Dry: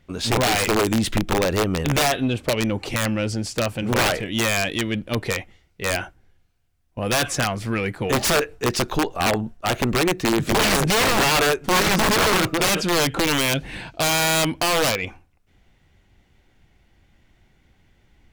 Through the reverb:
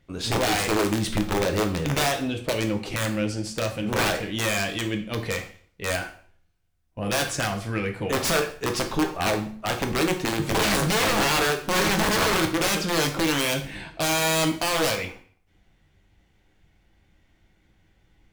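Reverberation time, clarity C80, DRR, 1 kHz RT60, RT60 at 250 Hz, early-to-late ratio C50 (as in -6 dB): 0.50 s, 14.0 dB, 4.0 dB, 0.50 s, 0.50 s, 10.0 dB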